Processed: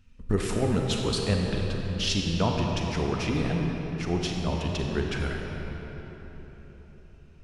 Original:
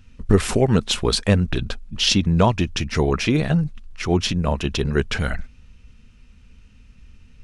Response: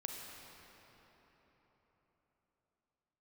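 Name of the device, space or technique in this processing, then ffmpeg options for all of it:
cathedral: -filter_complex "[1:a]atrim=start_sample=2205[a];[0:a][a]afir=irnorm=-1:irlink=0,volume=-6.5dB"

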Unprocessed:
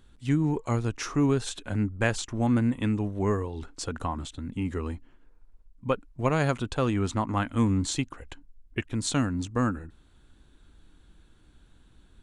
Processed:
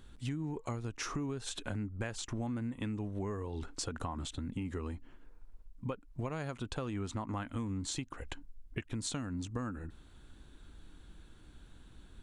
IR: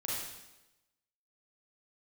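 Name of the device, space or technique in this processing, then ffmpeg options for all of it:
serial compression, leveller first: -af "acompressor=threshold=-30dB:ratio=2,acompressor=threshold=-38dB:ratio=4,volume=2dB"

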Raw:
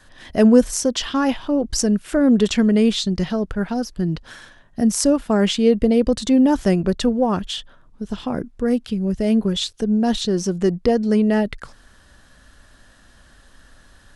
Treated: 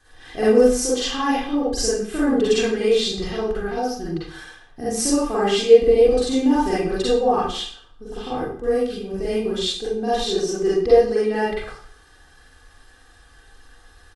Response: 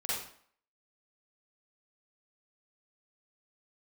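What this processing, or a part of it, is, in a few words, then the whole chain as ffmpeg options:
microphone above a desk: -filter_complex "[0:a]aecho=1:1:2.5:0.69[a];[1:a]atrim=start_sample=2205[b];[a][b]afir=irnorm=-1:irlink=0,volume=-5.5dB"

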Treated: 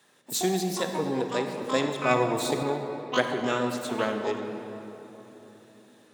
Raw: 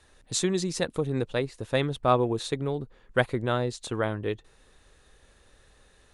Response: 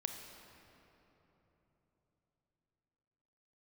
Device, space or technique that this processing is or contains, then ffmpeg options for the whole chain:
shimmer-style reverb: -filter_complex "[0:a]asplit=2[a][b];[b]asetrate=88200,aresample=44100,atempo=0.5,volume=-6dB[c];[a][c]amix=inputs=2:normalize=0[d];[1:a]atrim=start_sample=2205[e];[d][e]afir=irnorm=-1:irlink=0,highpass=f=170:w=0.5412,highpass=f=170:w=1.3066,asettb=1/sr,asplit=3[f][g][h];[f]atrim=end=2.114[i];[g]atrim=start=2.11:end=2.63,asetpts=PTS-STARTPTS,afade=t=in:d=0.004:c=qsin,afade=t=out:st=0.516:d=0.004:c=qsin,bass=f=250:g=5,treble=f=4k:g=5[j];[h]atrim=start=2.626[k];[i][j]acrossfade=d=0.004:c1=hsin:c2=qsin[l];[l][k]acrossfade=d=0.004:c1=qsin:c2=hsin"

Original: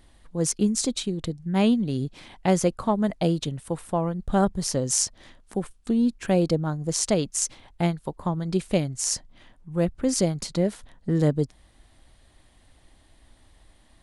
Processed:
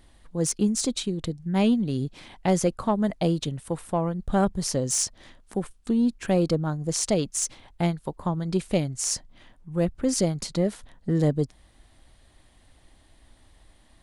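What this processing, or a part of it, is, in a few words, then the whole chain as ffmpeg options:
saturation between pre-emphasis and de-emphasis: -af "highshelf=f=6.5k:g=10,asoftclip=type=tanh:threshold=-10dB,highshelf=f=6.5k:g=-10"

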